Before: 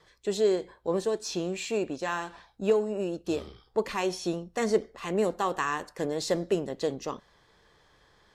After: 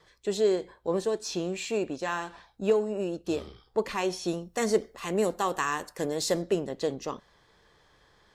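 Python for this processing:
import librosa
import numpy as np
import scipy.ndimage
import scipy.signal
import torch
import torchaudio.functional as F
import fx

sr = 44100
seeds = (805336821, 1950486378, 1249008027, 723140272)

y = fx.high_shelf(x, sr, hz=7300.0, db=10.5, at=(4.28, 6.42))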